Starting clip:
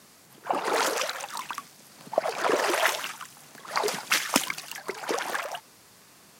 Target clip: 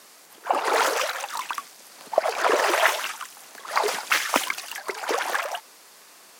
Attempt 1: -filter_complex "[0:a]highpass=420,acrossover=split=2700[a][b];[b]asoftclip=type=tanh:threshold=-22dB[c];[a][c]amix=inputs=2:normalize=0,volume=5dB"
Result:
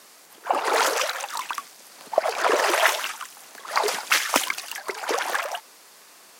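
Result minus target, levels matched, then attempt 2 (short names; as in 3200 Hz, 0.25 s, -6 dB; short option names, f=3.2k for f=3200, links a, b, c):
soft clip: distortion -5 dB
-filter_complex "[0:a]highpass=420,acrossover=split=2700[a][b];[b]asoftclip=type=tanh:threshold=-31dB[c];[a][c]amix=inputs=2:normalize=0,volume=5dB"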